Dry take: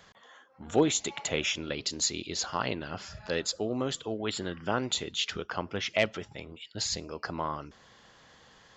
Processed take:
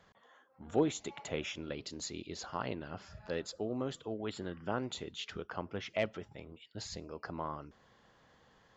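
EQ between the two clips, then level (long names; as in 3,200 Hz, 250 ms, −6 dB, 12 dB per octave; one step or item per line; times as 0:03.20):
high-shelf EQ 2,100 Hz −10 dB
−5.0 dB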